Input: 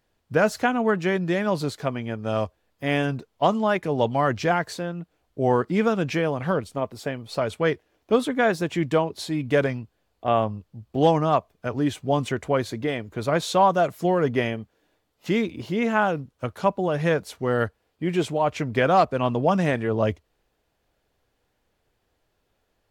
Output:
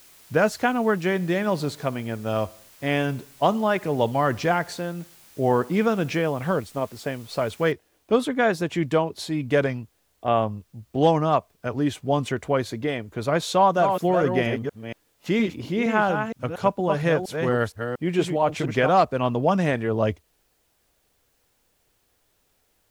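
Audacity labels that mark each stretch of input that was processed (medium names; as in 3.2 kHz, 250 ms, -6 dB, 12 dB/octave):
1.030000	6.140000	feedback delay 61 ms, feedback 58%, level -23 dB
7.720000	7.720000	noise floor step -52 dB -70 dB
13.530000	18.890000	chunks repeated in reverse 233 ms, level -6 dB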